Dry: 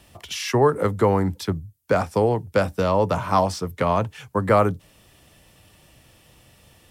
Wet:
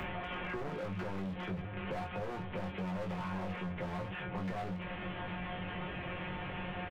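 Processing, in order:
linear delta modulator 16 kbit/s, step −34 dBFS
transient designer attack −3 dB, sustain +6 dB
in parallel at 0 dB: downward compressor 6 to 1, threshold −35 dBFS, peak gain reduction 16.5 dB
on the sum: tuned comb filter 180 Hz, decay 0.22 s, harmonics all, mix 90%
gain into a clipping stage and back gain 33.5 dB
double-tracking delay 21 ms −5.5 dB
on a send: echo through a band-pass that steps 614 ms, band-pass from 150 Hz, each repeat 1.4 octaves, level −11 dB
on the sum: multiband upward and downward compressor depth 100%
level −4 dB

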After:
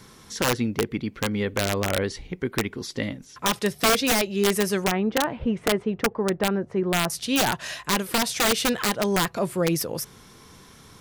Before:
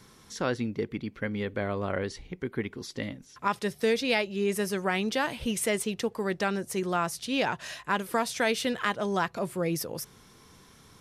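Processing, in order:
0:04.84–0:07.10: low-pass filter 1,300 Hz 12 dB per octave
wrap-around overflow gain 20 dB
level +6 dB

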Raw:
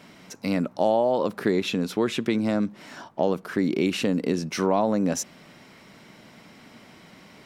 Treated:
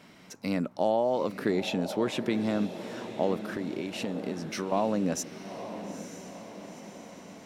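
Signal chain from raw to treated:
0:03.51–0:04.72: downward compressor, threshold −26 dBFS, peak gain reduction 9 dB
feedback delay with all-pass diffusion 912 ms, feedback 56%, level −11 dB
level −4.5 dB

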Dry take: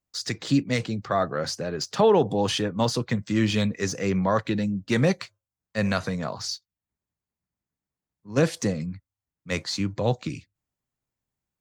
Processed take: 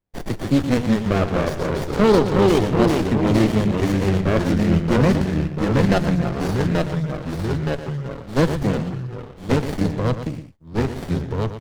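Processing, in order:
0:05.88–0:06.37: comb filter 5.7 ms, depth 90%
delay with pitch and tempo change per echo 107 ms, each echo −2 semitones, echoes 3
single-tap delay 116 ms −10.5 dB
windowed peak hold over 33 samples
level +4.5 dB

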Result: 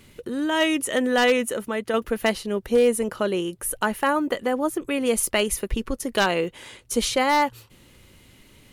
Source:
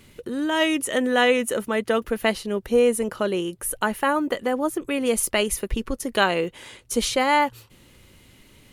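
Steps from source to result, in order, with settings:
0:01.46–0:01.94: downward compressor 1.5 to 1, threshold −29 dBFS, peak gain reduction 4.5 dB
wave folding −11 dBFS

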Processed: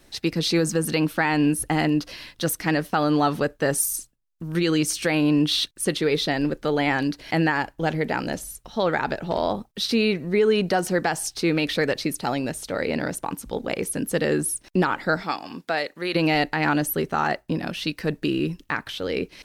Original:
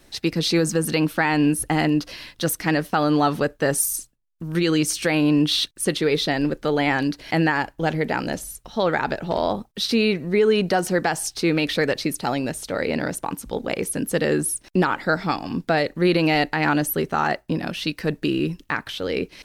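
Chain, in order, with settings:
0:15.22–0:16.14: high-pass filter 490 Hz → 1,000 Hz 6 dB per octave
level −1.5 dB

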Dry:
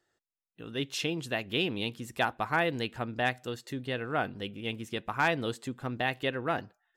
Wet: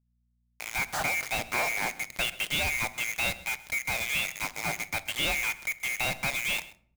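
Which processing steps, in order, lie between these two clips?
neighbouring bands swapped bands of 2,000 Hz
low-pass filter 1,300 Hz 6 dB per octave
parametric band 450 Hz −11 dB 0.28 octaves
leveller curve on the samples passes 3
in parallel at +0.5 dB: downward compressor 12 to 1, threshold −47 dBFS, peak gain reduction 23 dB
on the sum: bit reduction 5 bits
hum with harmonics 60 Hz, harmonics 4, −70 dBFS −6 dB per octave
on a send: single-tap delay 130 ms −19.5 dB
on the sum: rectangular room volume 910 cubic metres, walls furnished, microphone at 0.47 metres
level −3 dB

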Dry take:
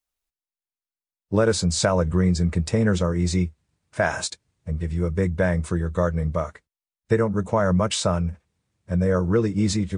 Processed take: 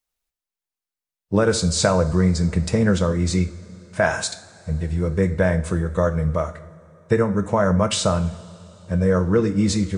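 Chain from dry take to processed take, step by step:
coupled-rooms reverb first 0.49 s, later 3.7 s, from −18 dB, DRR 8.5 dB
level +2 dB

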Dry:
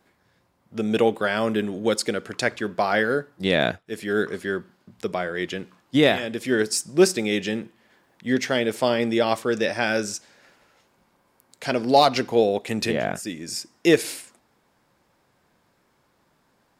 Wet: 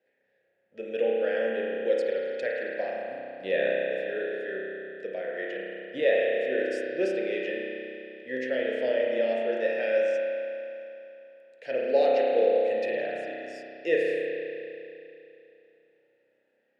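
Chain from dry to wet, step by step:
formant filter e
time-frequency box erased 0:02.90–0:03.28, 300–4,900 Hz
spring reverb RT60 2.9 s, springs 31 ms, chirp 25 ms, DRR −3.5 dB

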